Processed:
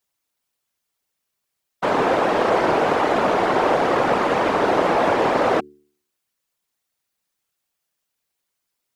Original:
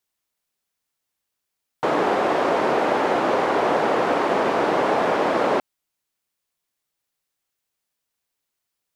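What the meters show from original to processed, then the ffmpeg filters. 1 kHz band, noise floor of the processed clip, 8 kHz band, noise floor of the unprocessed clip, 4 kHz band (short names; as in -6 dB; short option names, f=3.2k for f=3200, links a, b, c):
+2.0 dB, -79 dBFS, +2.0 dB, -81 dBFS, +2.0 dB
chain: -af "afftfilt=real='hypot(re,im)*cos(2*PI*random(0))':imag='hypot(re,im)*sin(2*PI*random(1))':win_size=512:overlap=0.75,bandreject=f=73.38:t=h:w=4,bandreject=f=146.76:t=h:w=4,bandreject=f=220.14:t=h:w=4,bandreject=f=293.52:t=h:w=4,bandreject=f=366.9:t=h:w=4,bandreject=f=440.28:t=h:w=4,volume=8dB"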